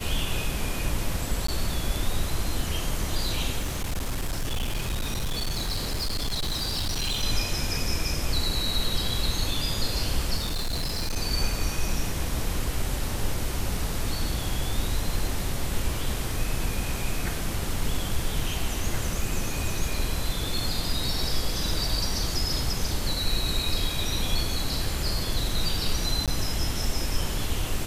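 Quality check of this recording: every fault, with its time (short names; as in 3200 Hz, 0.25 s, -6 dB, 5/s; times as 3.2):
1.47–1.48 gap 14 ms
3.59–7.24 clipped -24 dBFS
10.36–11.17 clipped -24 dBFS
26.26–26.28 gap 17 ms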